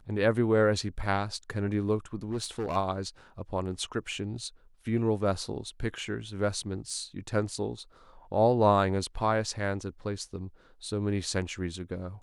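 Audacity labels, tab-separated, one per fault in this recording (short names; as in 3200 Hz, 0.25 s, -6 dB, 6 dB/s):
2.230000	2.770000	clipped -27 dBFS
6.900000	6.900000	gap 2.6 ms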